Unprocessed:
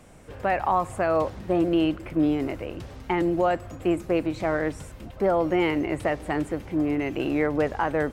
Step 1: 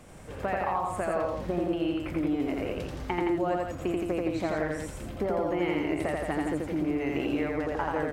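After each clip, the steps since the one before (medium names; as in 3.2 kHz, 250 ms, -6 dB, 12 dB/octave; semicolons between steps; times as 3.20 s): compression, threshold -28 dBFS, peak gain reduction 10 dB; on a send: loudspeakers at several distances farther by 29 m -2 dB, 58 m -5 dB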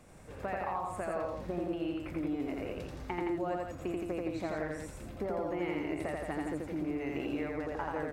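band-stop 3.1 kHz, Q 16; trim -6.5 dB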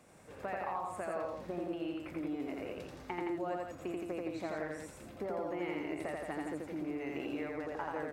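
high-pass 200 Hz 6 dB/octave; trim -2 dB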